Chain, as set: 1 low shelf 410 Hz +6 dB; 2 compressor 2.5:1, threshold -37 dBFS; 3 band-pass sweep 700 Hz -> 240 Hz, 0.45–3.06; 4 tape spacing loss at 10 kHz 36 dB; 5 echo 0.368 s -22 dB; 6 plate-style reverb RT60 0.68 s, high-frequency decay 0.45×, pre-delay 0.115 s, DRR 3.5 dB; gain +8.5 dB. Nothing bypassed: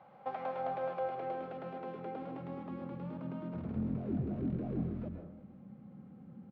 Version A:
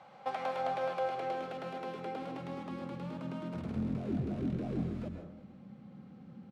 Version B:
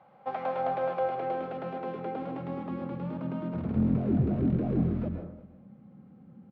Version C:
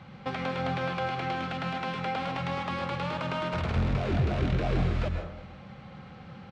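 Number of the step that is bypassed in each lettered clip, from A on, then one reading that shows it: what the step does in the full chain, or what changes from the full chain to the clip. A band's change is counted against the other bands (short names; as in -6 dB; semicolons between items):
4, 2 kHz band +5.0 dB; 2, mean gain reduction 5.5 dB; 3, 2 kHz band +11.5 dB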